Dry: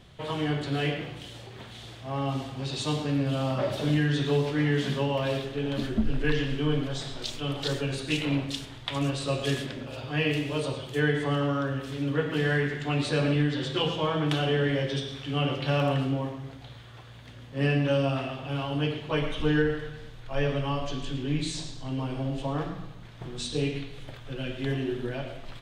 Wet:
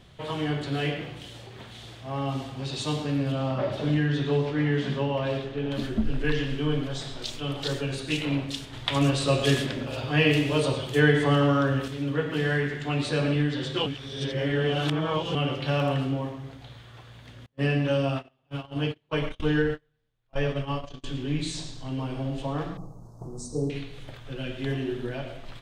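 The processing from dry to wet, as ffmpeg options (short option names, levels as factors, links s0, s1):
-filter_complex "[0:a]asettb=1/sr,asplit=3[s0][s1][s2];[s0]atrim=end=3.324[s3];[s1]atrim=start=3.32:end=5.71,asetpts=PTS-STARTPTS,afade=t=in:d=0.004:c=qsin,afade=t=out:st=2.386:d=0.004:c=qsin,aemphasis=mode=reproduction:type=50fm[s4];[s2]atrim=start=5.706[s5];[s3][s4]acrossfade=d=0.004:c1=hsin:c2=qsin[s6];[s6][s5]acrossfade=d=0.004:c1=qsin:c2=hsin,asettb=1/sr,asplit=3[s7][s8][s9];[s7]atrim=end=8.734[s10];[s8]atrim=start=8.73:end=11.88,asetpts=PTS-STARTPTS,afade=t=in:d=0.004:c=qsin,afade=t=out:st=3.146:d=0.004:c=qsin,acontrast=37[s11];[s9]atrim=start=11.876[s12];[s10][s11]acrossfade=d=0.004:c1=hsin:c2=qsin[s13];[s13][s12]acrossfade=d=0.004:c1=qsin:c2=hsin,asettb=1/sr,asplit=3[s14][s15][s16];[s14]atrim=end=17.464[s17];[s15]atrim=start=17.46:end=21.04,asetpts=PTS-STARTPTS,afade=t=in:d=0.004:c=qsin,afade=t=out:st=3.576:d=0.004:c=qsin,agate=range=0.02:threshold=0.0316:ratio=16:release=100:detection=peak[s18];[s16]atrim=start=21.036[s19];[s17][s18]acrossfade=d=0.004:c1=hsin:c2=qsin[s20];[s20][s19]acrossfade=d=0.004:c1=qsin:c2=hsin,asettb=1/sr,asplit=3[s21][s22][s23];[s21]atrim=end=22.774[s24];[s22]atrim=start=22.77:end=23.7,asetpts=PTS-STARTPTS,afade=t=in:d=0.004:c=qsin,afade=t=out:st=0.926:d=0.004:c=qsin,asuperstop=centerf=2500:order=8:qfactor=0.55[s25];[s23]atrim=start=23.696[s26];[s24][s25]acrossfade=d=0.004:c1=hsin:c2=qsin[s27];[s27][s26]acrossfade=d=0.004:c1=qsin:c2=hsin,asplit=3[s28][s29][s30];[s28]atrim=end=13.862[s31];[s29]atrim=start=13.858:end=15.352,asetpts=PTS-STARTPTS,areverse[s32];[s30]atrim=start=15.348[s33];[s31][s32]acrossfade=d=0.004:c1=hsin:c2=hsin[s34];[s34][s33]acrossfade=d=0.004:c1=hsin:c2=hsin"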